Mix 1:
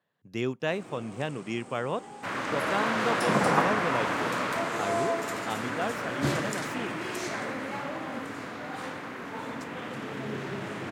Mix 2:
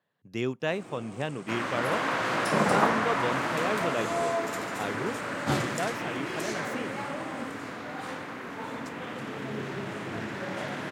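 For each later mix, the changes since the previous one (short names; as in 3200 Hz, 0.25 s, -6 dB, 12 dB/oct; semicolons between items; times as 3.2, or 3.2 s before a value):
second sound: entry -0.75 s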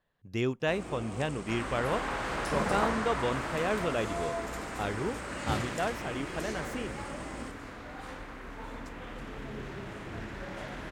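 first sound +4.0 dB; second sound -6.5 dB; master: remove HPF 120 Hz 24 dB/oct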